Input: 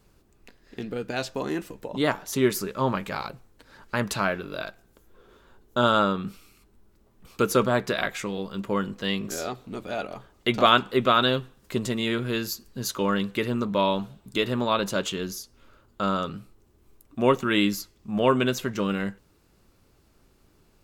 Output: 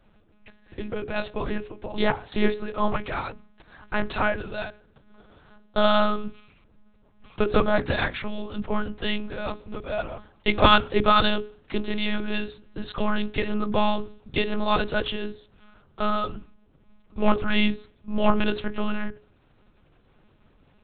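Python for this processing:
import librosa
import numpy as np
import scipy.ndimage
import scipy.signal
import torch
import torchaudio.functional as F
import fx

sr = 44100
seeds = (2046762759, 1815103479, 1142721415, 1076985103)

y = fx.lpc_monotone(x, sr, seeds[0], pitch_hz=210.0, order=8)
y = fx.hum_notches(y, sr, base_hz=60, count=7)
y = y * 10.0 ** (2.5 / 20.0)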